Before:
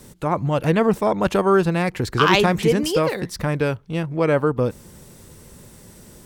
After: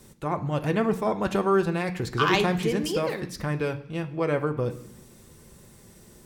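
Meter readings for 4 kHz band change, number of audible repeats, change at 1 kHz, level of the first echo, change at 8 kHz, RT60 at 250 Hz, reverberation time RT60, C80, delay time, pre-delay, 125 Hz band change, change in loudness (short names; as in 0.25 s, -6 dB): -6.5 dB, none, -6.0 dB, none, -6.5 dB, 0.90 s, 0.65 s, 17.5 dB, none, 3 ms, -6.0 dB, -6.0 dB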